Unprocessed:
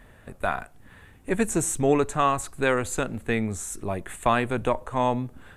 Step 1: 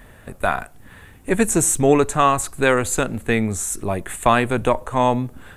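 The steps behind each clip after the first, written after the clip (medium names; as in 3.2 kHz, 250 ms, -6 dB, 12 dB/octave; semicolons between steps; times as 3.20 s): treble shelf 8.2 kHz +6.5 dB; trim +6 dB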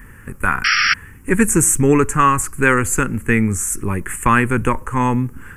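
painted sound noise, 0.64–0.94 s, 1.2–5.7 kHz -16 dBFS; static phaser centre 1.6 kHz, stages 4; trim +6 dB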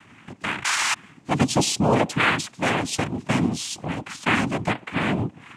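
dynamic bell 1.5 kHz, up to -4 dB, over -27 dBFS, Q 2.2; noise-vocoded speech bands 4; trim -5.5 dB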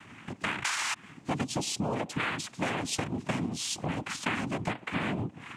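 compression 10:1, threshold -28 dBFS, peak gain reduction 14.5 dB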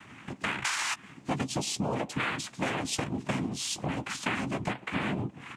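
doubling 15 ms -11 dB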